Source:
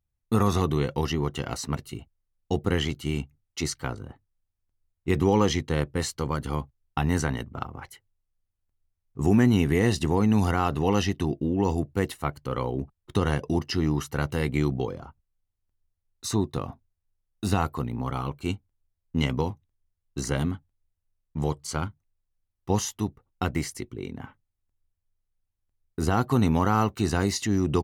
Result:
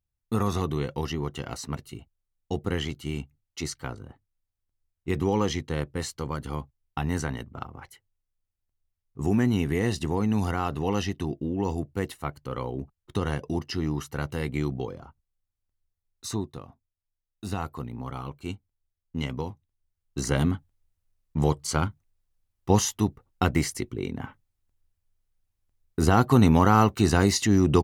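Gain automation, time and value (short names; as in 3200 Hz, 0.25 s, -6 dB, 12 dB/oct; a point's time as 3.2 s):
16.31 s -3.5 dB
16.68 s -12.5 dB
17.78 s -5.5 dB
19.51 s -5.5 dB
20.53 s +4 dB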